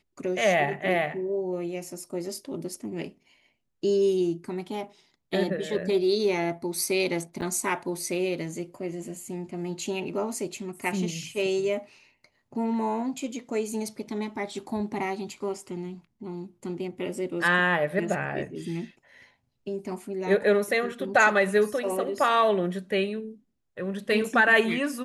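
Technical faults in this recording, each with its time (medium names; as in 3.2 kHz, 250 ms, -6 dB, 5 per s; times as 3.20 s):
7.41–7.42 s: dropout 8.7 ms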